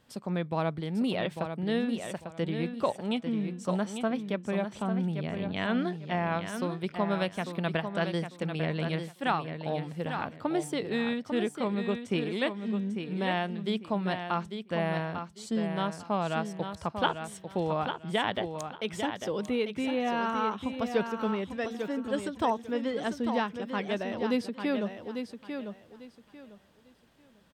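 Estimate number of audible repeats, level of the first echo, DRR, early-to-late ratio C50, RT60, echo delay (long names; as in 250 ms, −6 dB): 3, −7.5 dB, no reverb audible, no reverb audible, no reverb audible, 847 ms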